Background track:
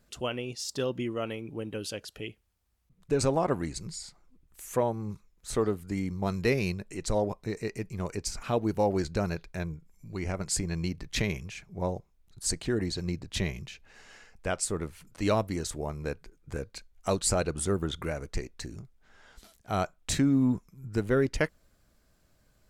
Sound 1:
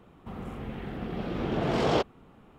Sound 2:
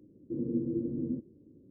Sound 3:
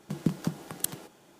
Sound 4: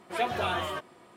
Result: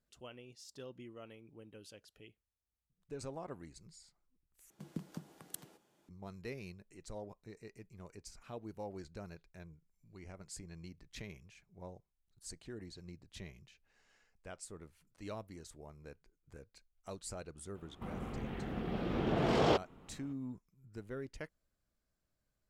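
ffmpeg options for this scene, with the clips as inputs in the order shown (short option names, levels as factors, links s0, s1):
-filter_complex "[0:a]volume=0.119,asplit=2[s0][s1];[s0]atrim=end=4.704[s2];[3:a]atrim=end=1.39,asetpts=PTS-STARTPTS,volume=0.168[s3];[s1]atrim=start=6.086[s4];[1:a]atrim=end=2.58,asetpts=PTS-STARTPTS,volume=0.631,afade=t=in:d=0.004:c=hsin,afade=t=out:st=2.576:d=0.004:c=hsin,adelay=17750[s5];[s2][s3]acrossfade=d=0.004:c1=hsin:c2=hsin[s6];[s6][s4]acrossfade=d=0.004:c1=hsin:c2=hsin[s7];[s7][s5]amix=inputs=2:normalize=0"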